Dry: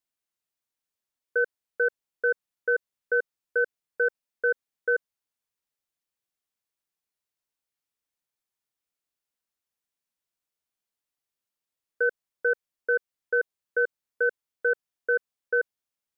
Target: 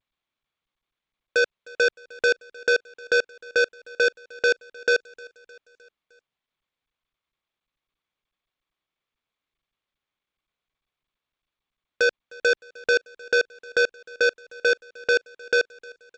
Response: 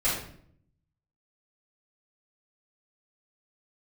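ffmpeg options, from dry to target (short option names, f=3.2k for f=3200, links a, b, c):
-filter_complex "[0:a]highpass=f=320:p=1,equalizer=f=1.2k:w=2.6:g=-7.5,bandreject=f=870:w=12,dynaudnorm=f=210:g=11:m=10.5dB,alimiter=limit=-18dB:level=0:latency=1:release=57,acrusher=bits=3:mix=0:aa=0.5,asplit=2[a][b];[b]aecho=0:1:307|614|921|1228:0.0708|0.0396|0.0222|0.0124[c];[a][c]amix=inputs=2:normalize=0,volume=4.5dB" -ar 16000 -c:a g722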